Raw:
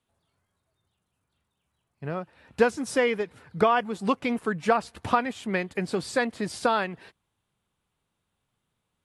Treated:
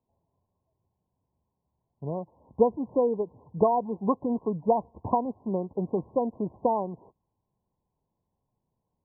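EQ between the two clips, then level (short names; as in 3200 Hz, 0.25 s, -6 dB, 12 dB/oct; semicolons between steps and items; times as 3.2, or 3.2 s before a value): brick-wall FIR low-pass 1100 Hz; 0.0 dB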